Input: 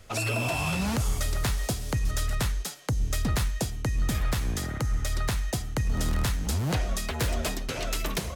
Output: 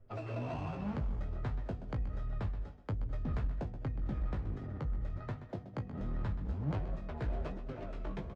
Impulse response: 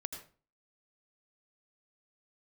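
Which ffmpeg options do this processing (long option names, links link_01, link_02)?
-filter_complex "[0:a]asettb=1/sr,asplit=3[link_01][link_02][link_03];[link_01]atrim=end=5.164[link_04];[link_02]atrim=start=5.16:end=6.01,asetpts=PTS-STARTPTS,afade=type=in:duration=0.004:curve=qsin,afade=type=out:start_time=0.846:duration=0.004:curve=qsin,highpass=frequency=93:width=0.5412,highpass=frequency=93:width=1.3066[link_05];[link_03]atrim=start=6.006[link_06];[link_04][link_05]acrossfade=duration=0.004:curve1=hsin:curve2=qsin[link_07];[link_07][link_06]acrossfade=duration=0.004:curve1=qsin:curve2=hsin,adynamicsmooth=sensitivity=1:basefreq=680,flanger=delay=7.4:depth=9:regen=30:speed=1.3:shape=sinusoidal,asplit=2[link_08][link_09];[link_09]adelay=20,volume=-7.5dB[link_10];[link_08][link_10]amix=inputs=2:normalize=0,bandreject=frequency=246:width_type=h:width=4,bandreject=frequency=492:width_type=h:width=4,bandreject=frequency=738:width_type=h:width=4,asplit=2[link_11][link_12];[1:a]atrim=start_sample=2205,adelay=128[link_13];[link_12][link_13]afir=irnorm=-1:irlink=0,volume=-10.5dB[link_14];[link_11][link_14]amix=inputs=2:normalize=0,aeval=exprs='clip(val(0),-1,0.0501)':channel_layout=same,lowpass=8000,volume=-5dB" -ar 24000 -c:a aac -b:a 96k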